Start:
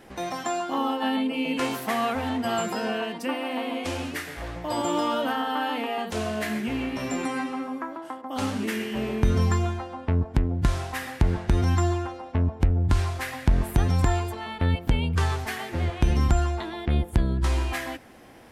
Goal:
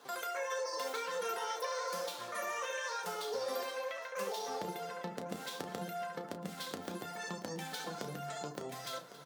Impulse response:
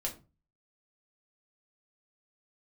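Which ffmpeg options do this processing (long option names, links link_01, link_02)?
-filter_complex "[0:a]acompressor=threshold=-27dB:ratio=6,highpass=frequency=83:width=0.5412,highpass=frequency=83:width=1.3066,equalizer=frequency=1200:width_type=o:width=1.4:gain=-5.5,flanger=delay=1.4:depth=8.6:regen=-59:speed=0.34:shape=triangular,lowpass=11000,lowshelf=frequency=120:gain=-8,aecho=1:1:66|547:0.316|0.158,asplit=2[link_01][link_02];[1:a]atrim=start_sample=2205[link_03];[link_02][link_03]afir=irnorm=-1:irlink=0,volume=-3dB[link_04];[link_01][link_04]amix=inputs=2:normalize=0,asetrate=88200,aresample=44100,asplit=2[link_05][link_06];[link_06]aecho=0:1:1105:0.178[link_07];[link_05][link_07]amix=inputs=2:normalize=0,volume=-6.5dB"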